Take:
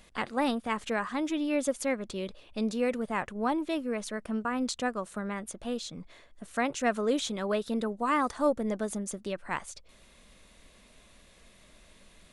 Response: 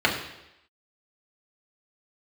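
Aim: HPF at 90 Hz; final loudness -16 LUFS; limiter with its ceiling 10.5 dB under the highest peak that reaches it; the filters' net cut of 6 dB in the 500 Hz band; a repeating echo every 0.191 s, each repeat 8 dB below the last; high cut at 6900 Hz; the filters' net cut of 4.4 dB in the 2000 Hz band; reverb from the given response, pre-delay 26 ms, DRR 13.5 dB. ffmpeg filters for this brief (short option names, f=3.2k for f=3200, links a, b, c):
-filter_complex "[0:a]highpass=90,lowpass=6.9k,equalizer=f=500:t=o:g=-7,equalizer=f=2k:t=o:g=-5,alimiter=level_in=3.5dB:limit=-24dB:level=0:latency=1,volume=-3.5dB,aecho=1:1:191|382|573|764|955:0.398|0.159|0.0637|0.0255|0.0102,asplit=2[a][b];[1:a]atrim=start_sample=2205,adelay=26[c];[b][c]afir=irnorm=-1:irlink=0,volume=-30.5dB[d];[a][d]amix=inputs=2:normalize=0,volume=21dB"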